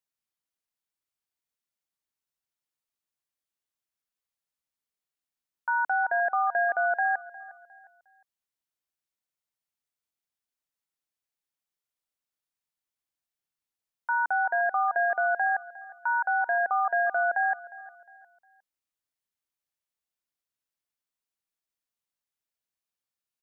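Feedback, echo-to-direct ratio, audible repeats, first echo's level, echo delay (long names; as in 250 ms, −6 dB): 36%, −19.0 dB, 2, −19.5 dB, 357 ms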